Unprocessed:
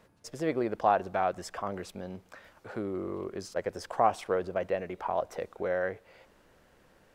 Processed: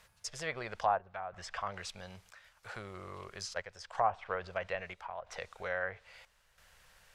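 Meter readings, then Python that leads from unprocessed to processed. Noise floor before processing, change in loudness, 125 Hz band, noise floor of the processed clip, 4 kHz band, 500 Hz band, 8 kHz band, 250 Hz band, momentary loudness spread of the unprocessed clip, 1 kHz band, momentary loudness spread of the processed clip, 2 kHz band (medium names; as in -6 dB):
-63 dBFS, -6.5 dB, -6.5 dB, -70 dBFS, +2.5 dB, -9.0 dB, +1.5 dB, -16.5 dB, 15 LU, -5.5 dB, 18 LU, +0.5 dB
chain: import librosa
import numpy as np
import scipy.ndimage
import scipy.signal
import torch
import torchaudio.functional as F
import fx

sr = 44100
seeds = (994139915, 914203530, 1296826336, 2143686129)

y = fx.tone_stack(x, sr, knobs='10-0-10')
y = fx.env_lowpass_down(y, sr, base_hz=1100.0, full_db=-36.0)
y = fx.chopper(y, sr, hz=0.76, depth_pct=60, duty_pct=75)
y = y * 10.0 ** (8.0 / 20.0)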